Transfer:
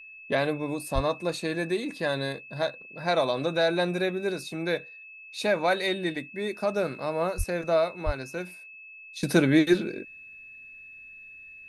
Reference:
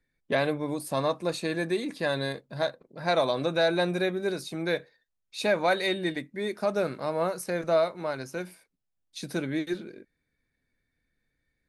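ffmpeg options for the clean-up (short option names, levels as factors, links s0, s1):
-filter_complex "[0:a]bandreject=f=2600:w=30,asplit=3[s0][s1][s2];[s0]afade=t=out:st=0.94:d=0.02[s3];[s1]highpass=f=140:w=0.5412,highpass=f=140:w=1.3066,afade=t=in:st=0.94:d=0.02,afade=t=out:st=1.06:d=0.02[s4];[s2]afade=t=in:st=1.06:d=0.02[s5];[s3][s4][s5]amix=inputs=3:normalize=0,asplit=3[s6][s7][s8];[s6]afade=t=out:st=7.37:d=0.02[s9];[s7]highpass=f=140:w=0.5412,highpass=f=140:w=1.3066,afade=t=in:st=7.37:d=0.02,afade=t=out:st=7.49:d=0.02[s10];[s8]afade=t=in:st=7.49:d=0.02[s11];[s9][s10][s11]amix=inputs=3:normalize=0,asplit=3[s12][s13][s14];[s12]afade=t=out:st=8.05:d=0.02[s15];[s13]highpass=f=140:w=0.5412,highpass=f=140:w=1.3066,afade=t=in:st=8.05:d=0.02,afade=t=out:st=8.17:d=0.02[s16];[s14]afade=t=in:st=8.17:d=0.02[s17];[s15][s16][s17]amix=inputs=3:normalize=0,asetnsamples=n=441:p=0,asendcmd='9.23 volume volume -10dB',volume=1"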